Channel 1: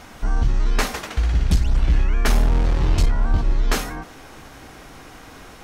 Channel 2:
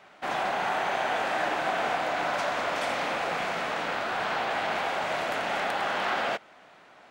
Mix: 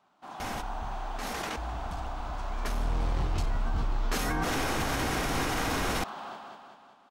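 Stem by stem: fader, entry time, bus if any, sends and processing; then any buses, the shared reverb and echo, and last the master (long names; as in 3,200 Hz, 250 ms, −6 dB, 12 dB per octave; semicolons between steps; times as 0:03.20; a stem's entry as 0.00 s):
0:02.32 −24 dB → 0:02.87 −15 dB, 0.40 s, no send, no echo send, envelope flattener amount 100%
−13.0 dB, 0.00 s, no send, echo send −4 dB, octave-band graphic EQ 250/500/1,000/2,000 Hz +5/−8/+7/−12 dB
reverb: not used
echo: repeating echo 192 ms, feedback 54%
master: brickwall limiter −20 dBFS, peak gain reduction 5 dB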